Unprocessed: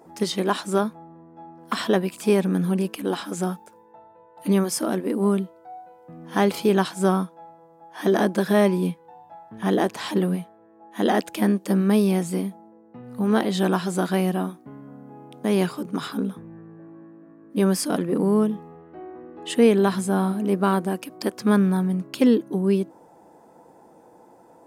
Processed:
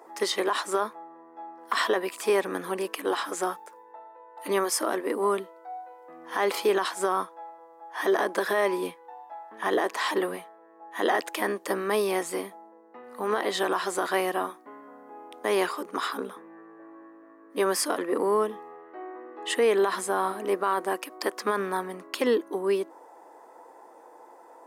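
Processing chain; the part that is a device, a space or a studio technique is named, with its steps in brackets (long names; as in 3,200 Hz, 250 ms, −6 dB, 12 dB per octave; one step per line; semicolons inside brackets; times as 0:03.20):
laptop speaker (high-pass filter 350 Hz 24 dB per octave; parametric band 1,100 Hz +7.5 dB 0.57 octaves; parametric band 1,900 Hz +7.5 dB 0.29 octaves; brickwall limiter −14.5 dBFS, peak gain reduction 10.5 dB)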